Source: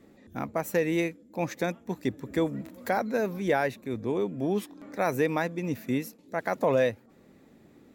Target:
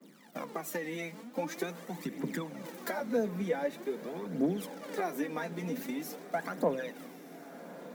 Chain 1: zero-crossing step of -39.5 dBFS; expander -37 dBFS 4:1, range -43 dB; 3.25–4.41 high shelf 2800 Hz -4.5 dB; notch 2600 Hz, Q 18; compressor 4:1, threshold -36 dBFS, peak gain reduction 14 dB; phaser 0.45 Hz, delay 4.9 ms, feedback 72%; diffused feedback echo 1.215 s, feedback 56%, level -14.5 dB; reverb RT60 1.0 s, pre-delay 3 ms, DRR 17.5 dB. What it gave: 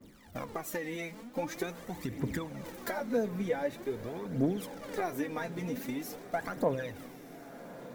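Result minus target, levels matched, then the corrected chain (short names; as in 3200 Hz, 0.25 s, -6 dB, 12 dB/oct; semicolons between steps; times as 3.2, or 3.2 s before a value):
125 Hz band +3.5 dB
zero-crossing step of -39.5 dBFS; expander -37 dBFS 4:1, range -43 dB; 3.25–4.41 high shelf 2800 Hz -4.5 dB; notch 2600 Hz, Q 18; compressor 4:1, threshold -36 dBFS, peak gain reduction 14 dB; steep high-pass 150 Hz 96 dB/oct; phaser 0.45 Hz, delay 4.9 ms, feedback 72%; diffused feedback echo 1.215 s, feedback 56%, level -14.5 dB; reverb RT60 1.0 s, pre-delay 3 ms, DRR 17.5 dB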